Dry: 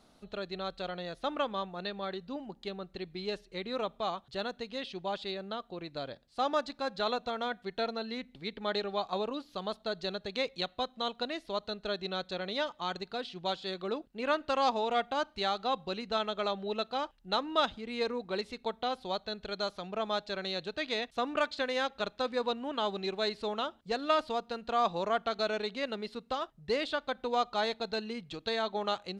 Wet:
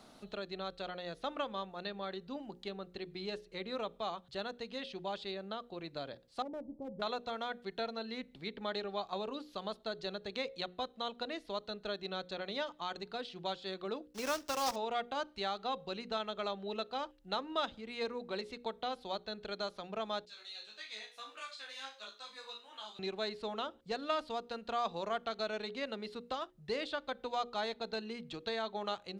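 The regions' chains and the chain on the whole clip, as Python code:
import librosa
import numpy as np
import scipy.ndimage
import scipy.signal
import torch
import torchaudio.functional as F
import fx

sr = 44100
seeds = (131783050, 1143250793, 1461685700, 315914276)

y = fx.chain(x, sr, fx.law_mismatch(coded='mu'),
    fx.gaussian_blur(sigma=16.0),
    fx.clip_hard(threshold_db=-33.5), at=(6.42, 7.02))
y = fx.chain(y, sr, fx.block_float(bits=3),
    fx.peak_eq(hz=5600.0, db=11.0, octaves=0.54), at=(14.13, 14.78))
y = fx.chain(y, sr, fx.differentiator(),
    fx.room_flutter(wall_m=3.2, rt60_s=0.33),
    fx.ensemble(), at=(20.25, 22.99))
y = fx.hum_notches(y, sr, base_hz=60, count=9)
y = fx.band_squash(y, sr, depth_pct=40)
y = y * 10.0 ** (-5.0 / 20.0)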